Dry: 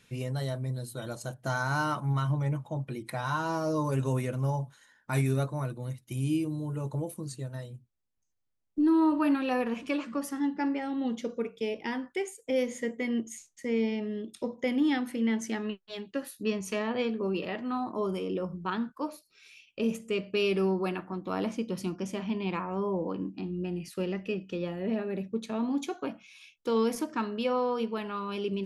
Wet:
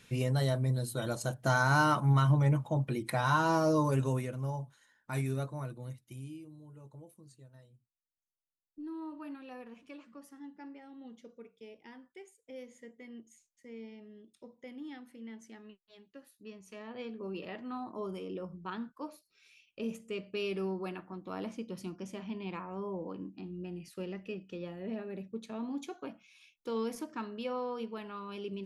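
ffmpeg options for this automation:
-af "volume=13.5dB,afade=t=out:st=3.59:d=0.73:silence=0.334965,afade=t=out:st=5.88:d=0.46:silence=0.251189,afade=t=in:st=16.66:d=0.82:silence=0.298538"

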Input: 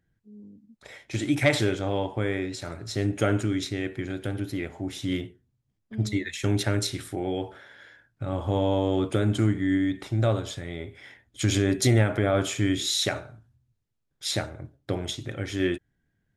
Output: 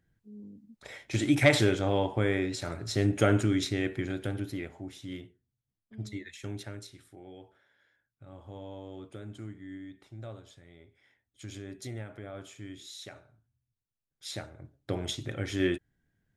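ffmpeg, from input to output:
-af "volume=17.5dB,afade=t=out:st=3.89:d=1.11:silence=0.251189,afade=t=out:st=6.31:d=0.57:silence=0.421697,afade=t=in:st=13.07:d=1.47:silence=0.334965,afade=t=in:st=14.54:d=0.57:silence=0.398107"

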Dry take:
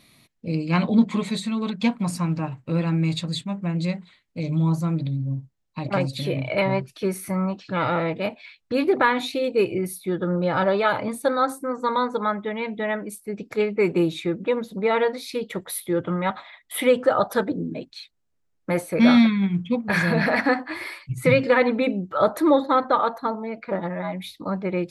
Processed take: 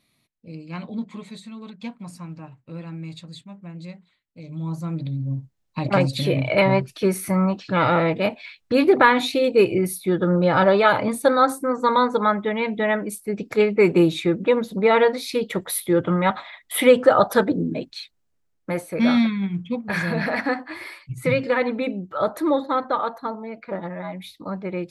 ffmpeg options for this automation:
-af "volume=4.5dB,afade=t=in:st=4.48:d=0.46:silence=0.375837,afade=t=in:st=4.94:d=0.93:silence=0.398107,afade=t=out:st=17.96:d=0.82:silence=0.421697"

